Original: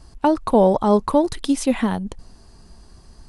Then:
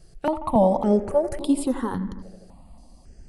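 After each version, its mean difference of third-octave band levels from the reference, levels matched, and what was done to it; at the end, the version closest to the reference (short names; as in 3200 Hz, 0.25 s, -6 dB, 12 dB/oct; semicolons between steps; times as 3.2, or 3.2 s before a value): 5.5 dB: bell 4300 Hz -5.5 dB 1.7 oct; tape echo 83 ms, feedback 84%, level -12.5 dB, low-pass 1800 Hz; step phaser 3.6 Hz 260–6100 Hz; gain -1 dB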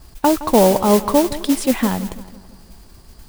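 8.5 dB: notch 6200 Hz; modulation noise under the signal 13 dB; on a send: darkening echo 0.166 s, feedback 52%, low-pass 3200 Hz, level -15.5 dB; on the sum: gain +2 dB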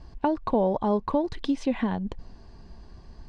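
4.0 dB: compressor 2:1, threshold -26 dBFS, peak gain reduction 9 dB; Butterworth band-stop 1300 Hz, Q 7.9; air absorption 180 m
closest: third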